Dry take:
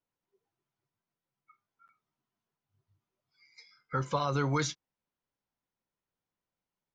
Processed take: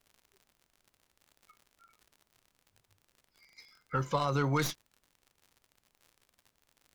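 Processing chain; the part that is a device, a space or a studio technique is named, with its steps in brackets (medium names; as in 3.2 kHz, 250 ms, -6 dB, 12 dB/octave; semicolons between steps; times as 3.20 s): record under a worn stylus (tracing distortion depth 0.072 ms; crackle 77 per s -47 dBFS; pink noise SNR 40 dB)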